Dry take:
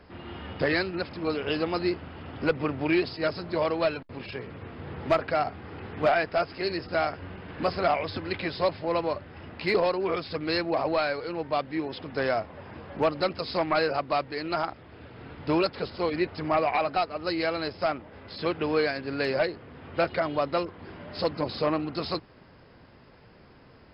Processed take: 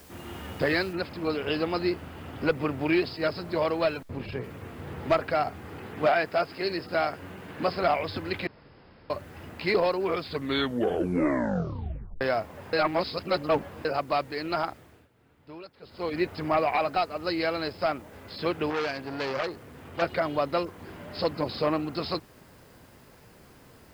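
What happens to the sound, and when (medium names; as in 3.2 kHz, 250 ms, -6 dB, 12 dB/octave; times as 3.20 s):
0.93 s: noise floor step -55 dB -63 dB
4.03–4.44 s: tilt EQ -2 dB/octave
5.78–7.83 s: high-pass 110 Hz
8.47–9.10 s: room tone
10.22 s: tape stop 1.99 s
12.73–13.85 s: reverse
14.67–16.22 s: dip -19.5 dB, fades 0.41 s
18.70–20.02 s: transformer saturation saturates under 1.6 kHz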